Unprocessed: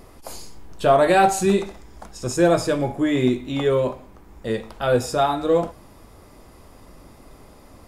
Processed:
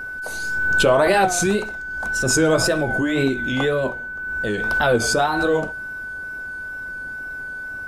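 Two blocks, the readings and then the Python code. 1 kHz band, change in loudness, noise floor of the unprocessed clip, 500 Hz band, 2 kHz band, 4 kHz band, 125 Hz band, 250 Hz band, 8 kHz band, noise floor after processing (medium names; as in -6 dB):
-1.0 dB, -0.5 dB, -48 dBFS, -0.5 dB, +12.5 dB, +5.5 dB, +0.5 dB, -0.5 dB, +7.5 dB, -31 dBFS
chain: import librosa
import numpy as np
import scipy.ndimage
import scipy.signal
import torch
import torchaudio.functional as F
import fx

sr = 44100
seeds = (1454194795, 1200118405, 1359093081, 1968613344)

y = fx.hpss(x, sr, part='percussive', gain_db=5)
y = fx.wow_flutter(y, sr, seeds[0], rate_hz=2.1, depth_cents=140.0)
y = y + 10.0 ** (-26.0 / 20.0) * np.sin(2.0 * np.pi * 1500.0 * np.arange(len(y)) / sr)
y = fx.pre_swell(y, sr, db_per_s=28.0)
y = y * 10.0 ** (-2.5 / 20.0)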